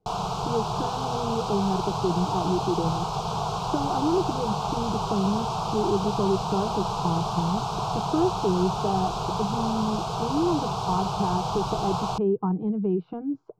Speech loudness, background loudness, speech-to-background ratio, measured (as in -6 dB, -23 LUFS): -28.5 LUFS, -29.0 LUFS, 0.5 dB